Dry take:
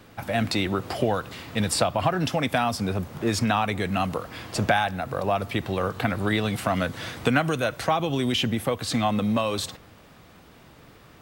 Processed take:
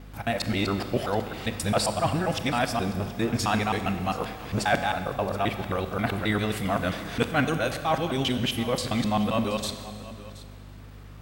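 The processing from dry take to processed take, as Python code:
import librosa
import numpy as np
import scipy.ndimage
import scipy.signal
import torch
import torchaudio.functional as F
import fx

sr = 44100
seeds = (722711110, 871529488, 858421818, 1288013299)

p1 = fx.local_reverse(x, sr, ms=133.0)
p2 = fx.add_hum(p1, sr, base_hz=50, snr_db=16)
p3 = p2 + fx.echo_single(p2, sr, ms=726, db=-17.5, dry=0)
p4 = fx.rev_schroeder(p3, sr, rt60_s=1.8, comb_ms=30, drr_db=9.0)
y = p4 * 10.0 ** (-2.0 / 20.0)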